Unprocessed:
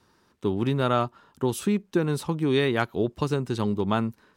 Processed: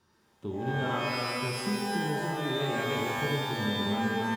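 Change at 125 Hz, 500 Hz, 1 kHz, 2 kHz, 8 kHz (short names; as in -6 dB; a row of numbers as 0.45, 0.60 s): -5.5, -6.5, -1.0, +2.5, -1.5 dB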